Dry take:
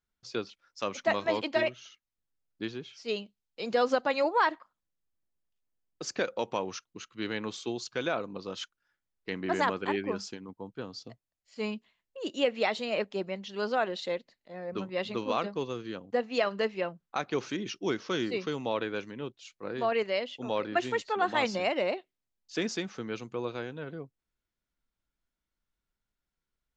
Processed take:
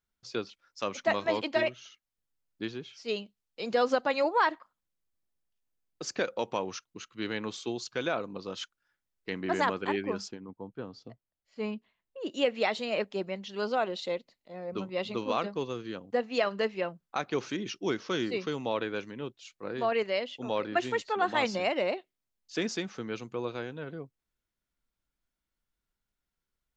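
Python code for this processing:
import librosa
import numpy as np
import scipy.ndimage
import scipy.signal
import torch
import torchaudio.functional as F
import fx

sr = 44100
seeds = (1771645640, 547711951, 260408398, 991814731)

y = fx.lowpass(x, sr, hz=fx.line((10.27, 1300.0), (12.3, 2200.0)), slope=6, at=(10.27, 12.3), fade=0.02)
y = fx.peak_eq(y, sr, hz=1700.0, db=-8.5, octaves=0.26, at=(13.63, 15.21))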